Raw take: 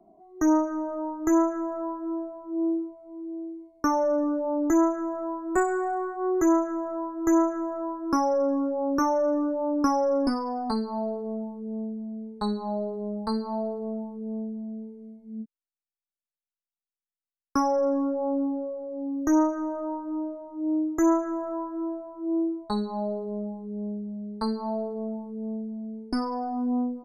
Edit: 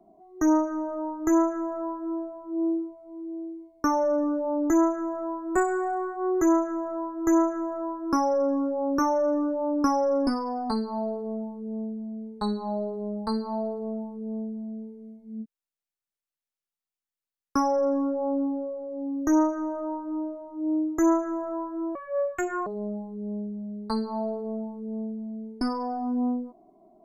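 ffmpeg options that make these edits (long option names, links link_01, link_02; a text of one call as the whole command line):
ffmpeg -i in.wav -filter_complex "[0:a]asplit=3[link_01][link_02][link_03];[link_01]atrim=end=21.954[link_04];[link_02]atrim=start=21.95:end=23.18,asetpts=PTS-STARTPTS,asetrate=75852,aresample=44100[link_05];[link_03]atrim=start=23.176[link_06];[link_04][link_05]acrossfade=duration=0.004:curve1=hsin:curve2=hsin[link_07];[link_07][link_06]acrossfade=duration=0.004:curve1=hsin:curve2=hsin" out.wav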